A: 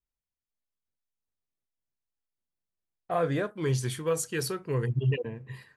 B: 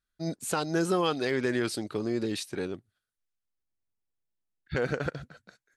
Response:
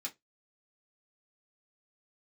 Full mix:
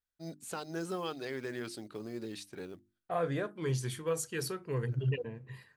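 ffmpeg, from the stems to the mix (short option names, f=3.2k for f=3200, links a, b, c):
-filter_complex "[0:a]volume=-5dB,asplit=2[a][b];[1:a]acrusher=bits=7:mode=log:mix=0:aa=0.000001,volume=-10.5dB[c];[b]apad=whole_len=254393[d];[c][d]sidechaincompress=threshold=-49dB:ratio=6:attack=16:release=637[e];[a][e]amix=inputs=2:normalize=0,bandreject=f=50:t=h:w=6,bandreject=f=100:t=h:w=6,bandreject=f=150:t=h:w=6,bandreject=f=200:t=h:w=6,bandreject=f=250:t=h:w=6,bandreject=f=300:t=h:w=6,bandreject=f=350:t=h:w=6"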